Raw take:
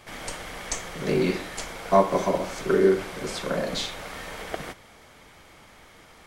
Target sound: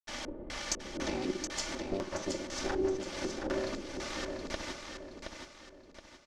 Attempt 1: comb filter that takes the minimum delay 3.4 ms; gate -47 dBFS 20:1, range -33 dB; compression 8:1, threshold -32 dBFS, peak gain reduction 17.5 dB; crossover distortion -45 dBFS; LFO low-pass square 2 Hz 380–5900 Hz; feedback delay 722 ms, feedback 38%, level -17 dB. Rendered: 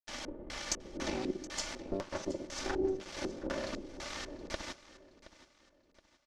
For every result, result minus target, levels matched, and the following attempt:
echo-to-direct -11 dB; crossover distortion: distortion +7 dB
comb filter that takes the minimum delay 3.4 ms; gate -47 dBFS 20:1, range -33 dB; compression 8:1, threshold -32 dBFS, peak gain reduction 17.5 dB; crossover distortion -45 dBFS; LFO low-pass square 2 Hz 380–5900 Hz; feedback delay 722 ms, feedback 38%, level -6 dB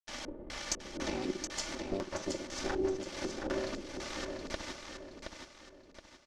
crossover distortion: distortion +7 dB
comb filter that takes the minimum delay 3.4 ms; gate -47 dBFS 20:1, range -33 dB; compression 8:1, threshold -32 dBFS, peak gain reduction 17.5 dB; crossover distortion -52 dBFS; LFO low-pass square 2 Hz 380–5900 Hz; feedback delay 722 ms, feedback 38%, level -6 dB

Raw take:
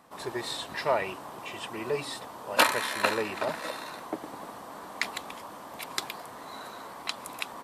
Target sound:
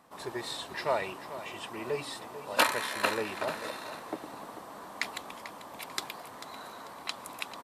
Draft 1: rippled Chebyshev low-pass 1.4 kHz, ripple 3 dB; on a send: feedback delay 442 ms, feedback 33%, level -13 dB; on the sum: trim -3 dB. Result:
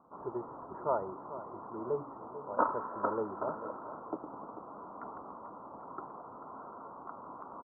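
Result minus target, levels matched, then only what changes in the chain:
1 kHz band +3.0 dB
remove: rippled Chebyshev low-pass 1.4 kHz, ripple 3 dB

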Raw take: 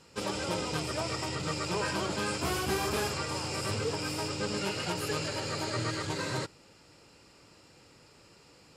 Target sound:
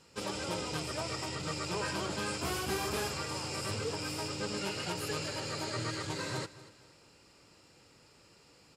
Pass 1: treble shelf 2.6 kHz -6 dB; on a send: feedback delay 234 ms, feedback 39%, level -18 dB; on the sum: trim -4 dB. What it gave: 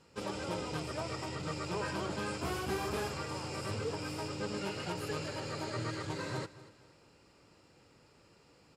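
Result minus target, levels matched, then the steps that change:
4 kHz band -3.5 dB
change: treble shelf 2.6 kHz +2 dB

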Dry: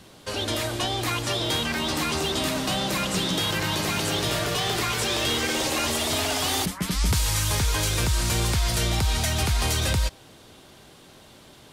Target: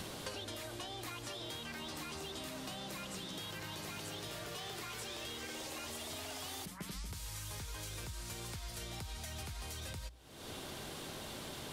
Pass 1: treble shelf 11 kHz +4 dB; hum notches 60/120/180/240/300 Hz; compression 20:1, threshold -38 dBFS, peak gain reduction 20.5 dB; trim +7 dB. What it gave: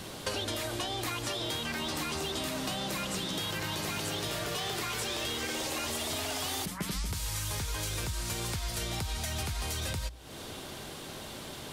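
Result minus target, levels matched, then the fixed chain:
compression: peak gain reduction -10 dB
treble shelf 11 kHz +4 dB; hum notches 60/120/180/240/300 Hz; compression 20:1, threshold -48.5 dBFS, peak gain reduction 30.5 dB; trim +7 dB

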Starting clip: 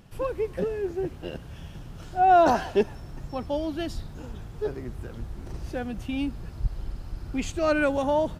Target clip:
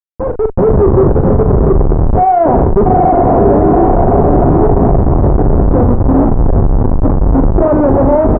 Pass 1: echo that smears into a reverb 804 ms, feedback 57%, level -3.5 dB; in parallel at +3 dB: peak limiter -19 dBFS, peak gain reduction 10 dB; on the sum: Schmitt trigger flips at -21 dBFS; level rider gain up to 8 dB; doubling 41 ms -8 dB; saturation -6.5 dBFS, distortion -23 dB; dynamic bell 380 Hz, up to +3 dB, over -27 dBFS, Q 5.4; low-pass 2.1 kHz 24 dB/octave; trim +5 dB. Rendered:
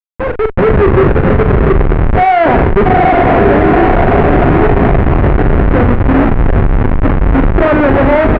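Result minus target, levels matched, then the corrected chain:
2 kHz band +16.5 dB
echo that smears into a reverb 804 ms, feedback 57%, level -3.5 dB; in parallel at +3 dB: peak limiter -19 dBFS, peak gain reduction 10 dB; on the sum: Schmitt trigger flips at -21 dBFS; level rider gain up to 8 dB; doubling 41 ms -8 dB; saturation -6.5 dBFS, distortion -23 dB; dynamic bell 380 Hz, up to +3 dB, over -27 dBFS, Q 5.4; low-pass 990 Hz 24 dB/octave; trim +5 dB

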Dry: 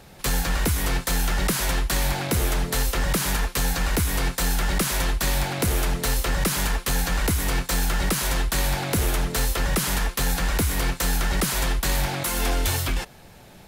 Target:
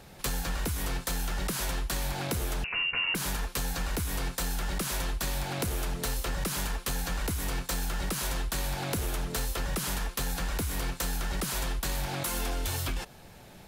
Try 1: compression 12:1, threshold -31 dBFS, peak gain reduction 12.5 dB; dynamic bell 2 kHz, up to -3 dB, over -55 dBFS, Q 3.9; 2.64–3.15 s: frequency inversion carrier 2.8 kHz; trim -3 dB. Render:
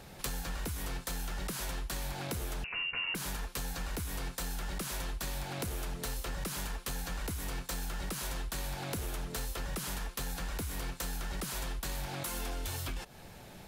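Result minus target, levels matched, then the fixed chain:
compression: peak gain reduction +6 dB
compression 12:1, threshold -24.5 dBFS, peak gain reduction 6.5 dB; dynamic bell 2 kHz, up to -3 dB, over -55 dBFS, Q 3.9; 2.64–3.15 s: frequency inversion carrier 2.8 kHz; trim -3 dB

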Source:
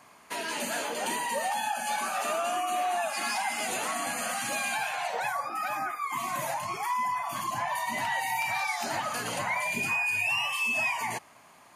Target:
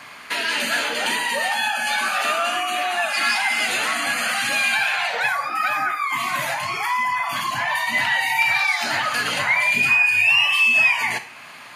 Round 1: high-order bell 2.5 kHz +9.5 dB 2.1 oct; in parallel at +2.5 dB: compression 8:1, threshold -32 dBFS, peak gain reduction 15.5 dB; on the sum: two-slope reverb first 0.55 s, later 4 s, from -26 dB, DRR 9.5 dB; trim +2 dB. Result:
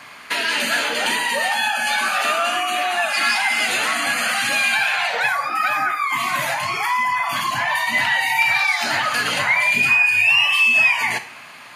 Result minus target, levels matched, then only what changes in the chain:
compression: peak gain reduction -8 dB
change: compression 8:1, threshold -41 dBFS, peak gain reduction 23 dB

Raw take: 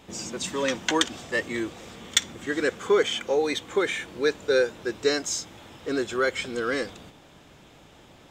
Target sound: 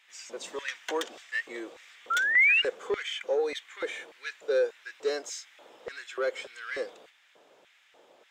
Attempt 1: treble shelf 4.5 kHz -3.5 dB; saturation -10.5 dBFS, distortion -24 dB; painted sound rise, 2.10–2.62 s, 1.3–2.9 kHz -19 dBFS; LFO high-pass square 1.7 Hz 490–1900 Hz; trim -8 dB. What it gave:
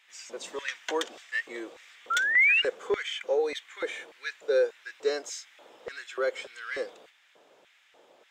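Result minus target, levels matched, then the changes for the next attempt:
saturation: distortion -9 dB
change: saturation -17 dBFS, distortion -16 dB

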